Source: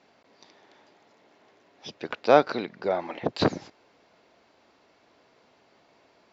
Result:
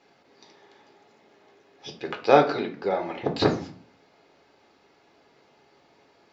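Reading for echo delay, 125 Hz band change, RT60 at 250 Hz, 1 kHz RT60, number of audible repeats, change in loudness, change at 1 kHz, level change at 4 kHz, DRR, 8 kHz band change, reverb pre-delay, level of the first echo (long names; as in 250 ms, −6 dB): no echo audible, +3.0 dB, 0.60 s, 0.40 s, no echo audible, +1.5 dB, +2.0 dB, +1.5 dB, 3.0 dB, can't be measured, 7 ms, no echo audible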